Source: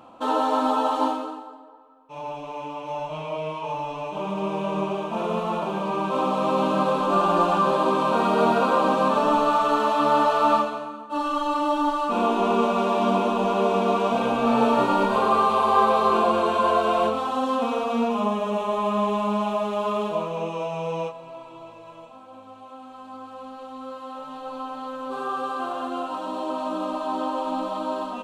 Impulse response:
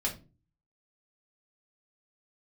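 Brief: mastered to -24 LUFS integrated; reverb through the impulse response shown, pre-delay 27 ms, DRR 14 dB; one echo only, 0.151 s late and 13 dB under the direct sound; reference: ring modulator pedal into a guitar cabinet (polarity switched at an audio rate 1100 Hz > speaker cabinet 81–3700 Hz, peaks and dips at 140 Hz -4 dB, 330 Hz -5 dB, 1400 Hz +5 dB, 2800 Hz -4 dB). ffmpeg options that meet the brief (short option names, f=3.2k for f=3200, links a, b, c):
-filter_complex "[0:a]aecho=1:1:151:0.224,asplit=2[a][b];[1:a]atrim=start_sample=2205,adelay=27[c];[b][c]afir=irnorm=-1:irlink=0,volume=-18.5dB[d];[a][d]amix=inputs=2:normalize=0,aeval=exprs='val(0)*sgn(sin(2*PI*1100*n/s))':c=same,highpass=81,equalizer=f=140:t=q:w=4:g=-4,equalizer=f=330:t=q:w=4:g=-5,equalizer=f=1.4k:t=q:w=4:g=5,equalizer=f=2.8k:t=q:w=4:g=-4,lowpass=f=3.7k:w=0.5412,lowpass=f=3.7k:w=1.3066,volume=-2dB"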